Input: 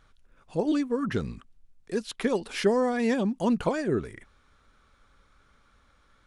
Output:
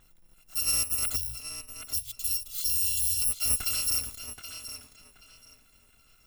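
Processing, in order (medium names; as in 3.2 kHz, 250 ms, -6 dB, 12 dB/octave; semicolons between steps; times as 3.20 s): bit-reversed sample order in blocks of 256 samples; 1.16–3.22 s: elliptic band-stop 130–3200 Hz; peak limiter -19.5 dBFS, peak gain reduction 9 dB; tape echo 776 ms, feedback 30%, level -6 dB, low-pass 5.2 kHz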